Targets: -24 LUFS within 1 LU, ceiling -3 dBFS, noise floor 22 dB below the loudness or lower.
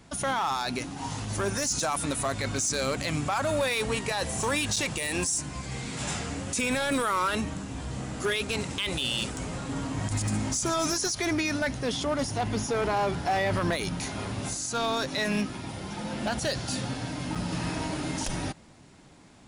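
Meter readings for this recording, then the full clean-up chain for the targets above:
clipped samples 0.9%; clipping level -21.0 dBFS; dropouts 2; longest dropout 5.6 ms; loudness -29.0 LUFS; peak level -21.0 dBFS; loudness target -24.0 LUFS
-> clip repair -21 dBFS; interpolate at 4.76/17.35 s, 5.6 ms; trim +5 dB

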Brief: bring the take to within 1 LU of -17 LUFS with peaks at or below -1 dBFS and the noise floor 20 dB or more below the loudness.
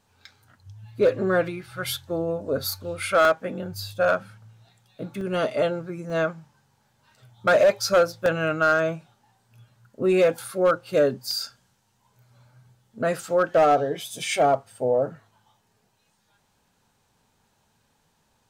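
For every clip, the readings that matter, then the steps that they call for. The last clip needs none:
clipped samples 0.4%; clipping level -12.5 dBFS; dropouts 7; longest dropout 1.3 ms; loudness -23.5 LUFS; peak level -12.5 dBFS; loudness target -17.0 LUFS
-> clip repair -12.5 dBFS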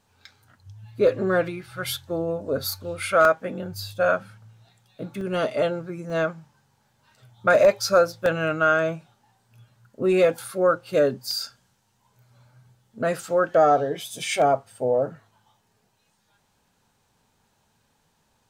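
clipped samples 0.0%; dropouts 7; longest dropout 1.3 ms
-> interpolate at 3.25/5.21/6.10/8.26/10.42/11.31/13.21 s, 1.3 ms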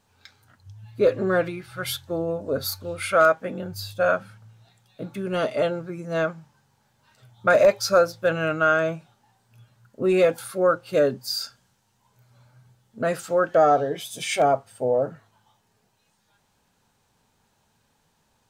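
dropouts 0; loudness -23.0 LUFS; peak level -5.5 dBFS; loudness target -17.0 LUFS
-> trim +6 dB; peak limiter -1 dBFS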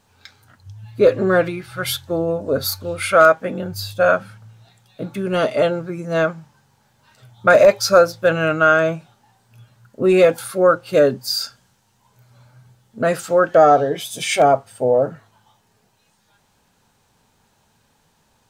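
loudness -17.5 LUFS; peak level -1.0 dBFS; noise floor -62 dBFS

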